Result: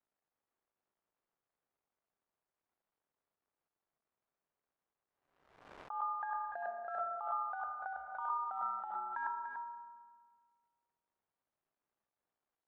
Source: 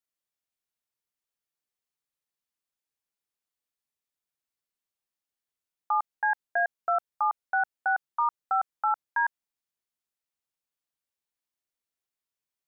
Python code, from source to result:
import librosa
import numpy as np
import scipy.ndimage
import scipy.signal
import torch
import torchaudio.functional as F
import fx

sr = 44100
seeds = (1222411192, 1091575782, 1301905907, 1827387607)

p1 = fx.law_mismatch(x, sr, coded='mu')
p2 = scipy.signal.sosfilt(scipy.signal.butter(2, 1100.0, 'lowpass', fs=sr, output='sos'), p1)
p3 = fx.rev_fdn(p2, sr, rt60_s=1.6, lf_ratio=1.55, hf_ratio=0.35, size_ms=15.0, drr_db=16.0)
p4 = fx.over_compress(p3, sr, threshold_db=-34.0, ratio=-0.5)
p5 = fx.low_shelf(p4, sr, hz=310.0, db=-8.0)
p6 = p5 + fx.echo_single(p5, sr, ms=292, db=-7.0, dry=0)
p7 = fx.pre_swell(p6, sr, db_per_s=64.0)
y = p7 * librosa.db_to_amplitude(-1.5)